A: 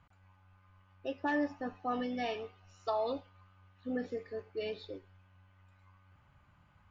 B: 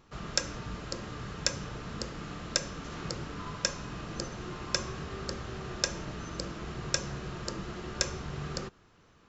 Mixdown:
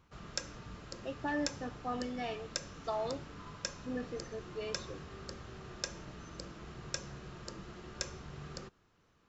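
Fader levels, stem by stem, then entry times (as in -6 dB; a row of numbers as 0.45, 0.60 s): -3.0, -9.0 dB; 0.00, 0.00 s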